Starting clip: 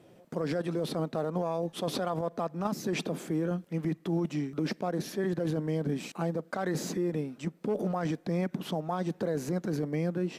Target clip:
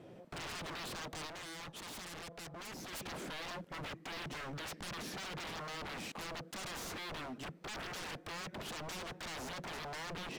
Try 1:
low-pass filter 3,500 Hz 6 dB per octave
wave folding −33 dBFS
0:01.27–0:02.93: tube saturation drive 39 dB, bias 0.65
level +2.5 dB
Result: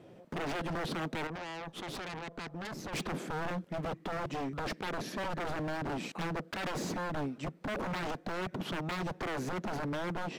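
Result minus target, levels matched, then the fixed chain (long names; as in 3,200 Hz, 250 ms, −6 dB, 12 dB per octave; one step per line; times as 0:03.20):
wave folding: distortion −8 dB
low-pass filter 3,500 Hz 6 dB per octave
wave folding −41.5 dBFS
0:01.27–0:02.93: tube saturation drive 39 dB, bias 0.65
level +2.5 dB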